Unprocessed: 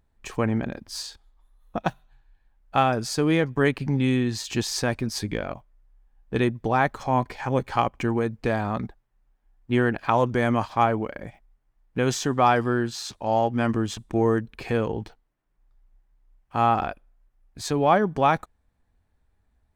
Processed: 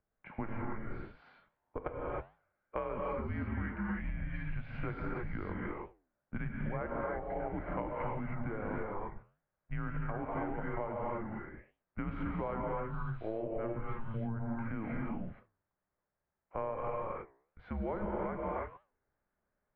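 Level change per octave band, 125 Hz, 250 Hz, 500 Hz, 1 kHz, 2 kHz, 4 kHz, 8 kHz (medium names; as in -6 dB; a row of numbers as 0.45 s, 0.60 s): -12.0 dB, -13.5 dB, -13.5 dB, -16.5 dB, -14.5 dB, under -30 dB, under -40 dB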